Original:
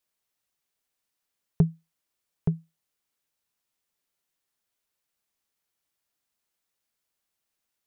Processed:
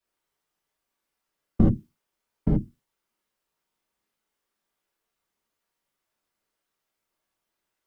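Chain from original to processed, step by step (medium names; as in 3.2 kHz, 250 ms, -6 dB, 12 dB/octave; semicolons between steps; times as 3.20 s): whisper effect; gated-style reverb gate 100 ms flat, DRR -6 dB; tape noise reduction on one side only decoder only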